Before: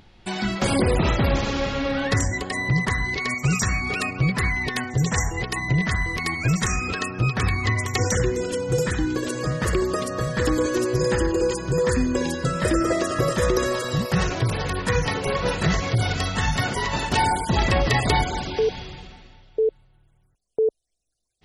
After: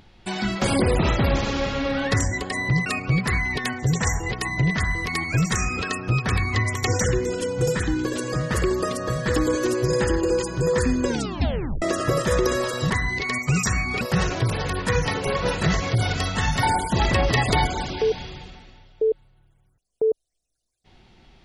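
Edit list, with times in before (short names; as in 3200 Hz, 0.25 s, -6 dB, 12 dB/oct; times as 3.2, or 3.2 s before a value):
2.86–3.97 move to 14.01
12.19 tape stop 0.74 s
16.63–17.2 cut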